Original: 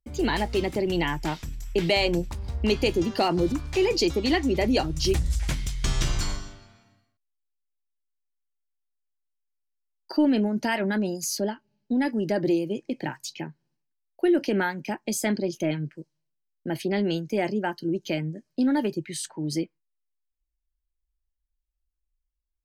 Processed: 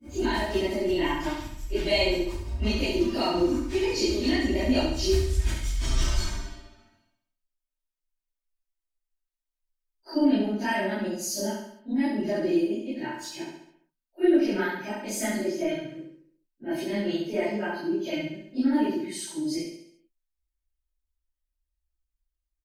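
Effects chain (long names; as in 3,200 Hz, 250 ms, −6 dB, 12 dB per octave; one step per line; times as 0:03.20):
random phases in long frames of 100 ms
comb filter 3.2 ms, depth 64%
repeating echo 68 ms, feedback 51%, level −5 dB
level −4.5 dB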